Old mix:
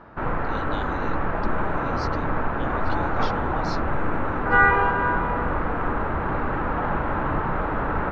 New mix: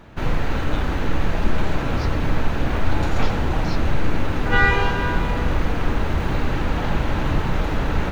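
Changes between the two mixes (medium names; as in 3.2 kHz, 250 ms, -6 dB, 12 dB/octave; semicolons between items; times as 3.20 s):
background: remove resonant low-pass 1.3 kHz, resonance Q 1.8; master: add bass shelf 190 Hz +8.5 dB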